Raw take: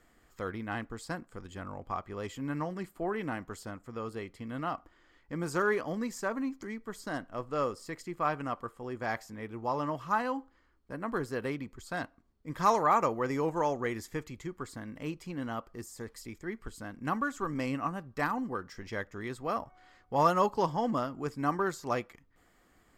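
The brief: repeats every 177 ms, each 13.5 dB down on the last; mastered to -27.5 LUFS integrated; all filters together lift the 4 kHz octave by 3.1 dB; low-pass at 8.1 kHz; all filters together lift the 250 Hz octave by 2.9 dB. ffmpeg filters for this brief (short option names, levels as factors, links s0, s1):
-af "lowpass=8100,equalizer=f=250:t=o:g=3.5,equalizer=f=4000:t=o:g=4.5,aecho=1:1:177|354:0.211|0.0444,volume=1.88"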